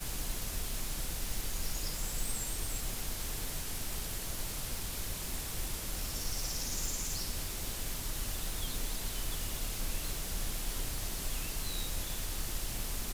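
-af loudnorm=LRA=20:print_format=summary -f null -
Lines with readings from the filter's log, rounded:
Input Integrated:    -37.2 LUFS
Input True Peak:     -21.7 dBTP
Input LRA:             0.7 LU
Input Threshold:     -47.2 LUFS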